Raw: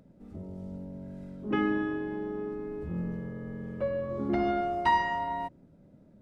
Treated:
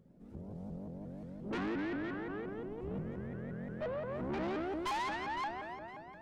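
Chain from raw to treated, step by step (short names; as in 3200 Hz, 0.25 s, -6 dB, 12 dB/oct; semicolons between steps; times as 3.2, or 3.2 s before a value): echo with dull and thin repeats by turns 0.128 s, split 870 Hz, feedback 76%, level -6 dB; tube stage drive 31 dB, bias 0.6; shaped vibrato saw up 5.7 Hz, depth 250 cents; gain -2.5 dB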